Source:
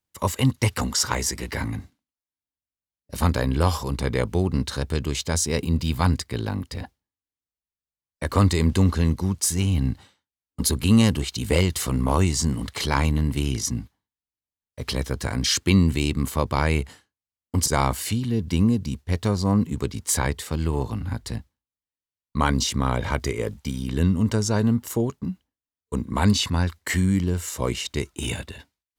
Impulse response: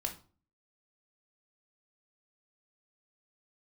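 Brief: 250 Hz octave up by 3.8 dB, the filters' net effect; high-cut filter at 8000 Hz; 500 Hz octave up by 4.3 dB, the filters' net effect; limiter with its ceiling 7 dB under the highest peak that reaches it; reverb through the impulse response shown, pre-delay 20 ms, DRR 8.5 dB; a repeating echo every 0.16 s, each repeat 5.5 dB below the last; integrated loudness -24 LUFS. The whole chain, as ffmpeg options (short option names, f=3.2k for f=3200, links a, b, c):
-filter_complex "[0:a]lowpass=8k,equalizer=f=250:t=o:g=4,equalizer=f=500:t=o:g=4,alimiter=limit=-10dB:level=0:latency=1,aecho=1:1:160|320|480|640|800|960|1120:0.531|0.281|0.149|0.079|0.0419|0.0222|0.0118,asplit=2[a][b];[1:a]atrim=start_sample=2205,adelay=20[c];[b][c]afir=irnorm=-1:irlink=0,volume=-9.5dB[d];[a][d]amix=inputs=2:normalize=0,volume=-2dB"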